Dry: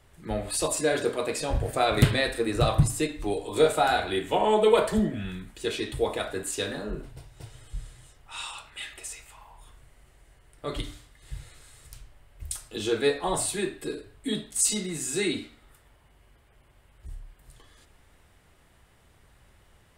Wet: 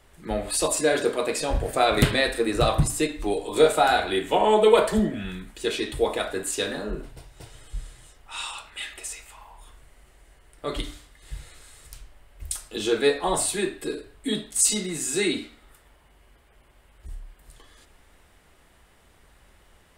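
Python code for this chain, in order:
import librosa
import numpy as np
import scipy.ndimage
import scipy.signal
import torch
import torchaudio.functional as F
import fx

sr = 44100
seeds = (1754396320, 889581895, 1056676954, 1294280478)

y = fx.peak_eq(x, sr, hz=110.0, db=-8.5, octaves=0.9)
y = y * librosa.db_to_amplitude(3.5)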